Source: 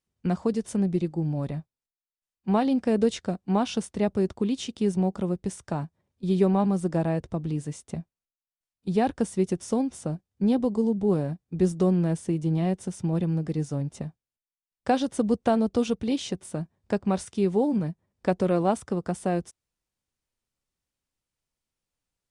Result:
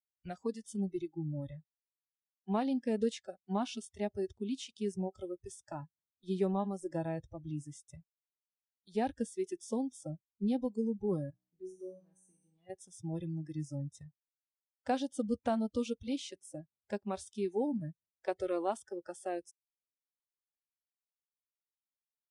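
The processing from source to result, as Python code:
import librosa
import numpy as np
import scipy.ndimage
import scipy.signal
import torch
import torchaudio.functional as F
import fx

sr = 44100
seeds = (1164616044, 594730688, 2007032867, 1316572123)

y = fx.comb_fb(x, sr, f0_hz=62.0, decay_s=1.1, harmonics='all', damping=0.0, mix_pct=90, at=(11.3, 12.7))
y = fx.noise_reduce_blind(y, sr, reduce_db=24)
y = y * 10.0 ** (-9.0 / 20.0)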